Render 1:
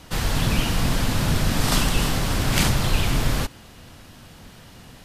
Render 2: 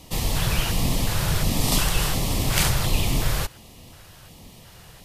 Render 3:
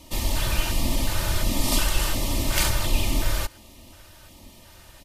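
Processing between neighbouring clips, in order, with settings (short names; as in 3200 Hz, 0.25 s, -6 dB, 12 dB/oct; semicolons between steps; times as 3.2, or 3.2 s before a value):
high shelf 10000 Hz +8 dB; LFO notch square 1.4 Hz 250–1500 Hz; gain -1 dB
comb 3.3 ms, depth 67%; gain -3 dB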